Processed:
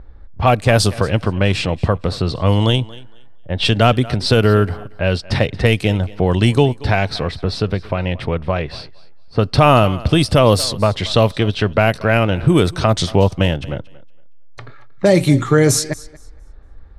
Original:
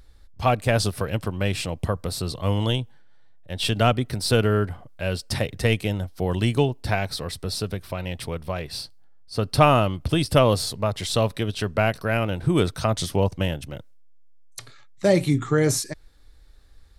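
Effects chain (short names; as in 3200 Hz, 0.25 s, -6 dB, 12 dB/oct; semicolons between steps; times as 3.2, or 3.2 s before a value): low-pass opened by the level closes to 1200 Hz, open at -16.5 dBFS; in parallel at -1 dB: compressor, threshold -30 dBFS, peak gain reduction 18 dB; on the sum: thinning echo 0.231 s, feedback 20%, high-pass 180 Hz, level -20 dB; maximiser +7.5 dB; gain -1 dB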